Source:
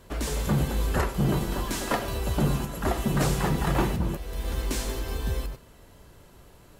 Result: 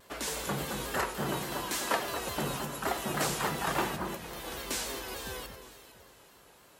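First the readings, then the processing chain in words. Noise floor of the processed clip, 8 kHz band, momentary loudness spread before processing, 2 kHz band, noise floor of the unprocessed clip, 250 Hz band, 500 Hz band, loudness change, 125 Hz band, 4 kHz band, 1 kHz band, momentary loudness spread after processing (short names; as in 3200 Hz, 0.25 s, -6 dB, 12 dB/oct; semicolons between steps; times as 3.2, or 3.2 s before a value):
-59 dBFS, 0.0 dB, 7 LU, 0.0 dB, -53 dBFS, -9.5 dB, -4.5 dB, -5.5 dB, -14.5 dB, 0.0 dB, -1.5 dB, 9 LU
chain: HPF 720 Hz 6 dB/oct; on a send: echo with dull and thin repeats by turns 0.228 s, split 1800 Hz, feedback 55%, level -8 dB; on the sum: shaped vibrato saw down 3.5 Hz, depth 100 cents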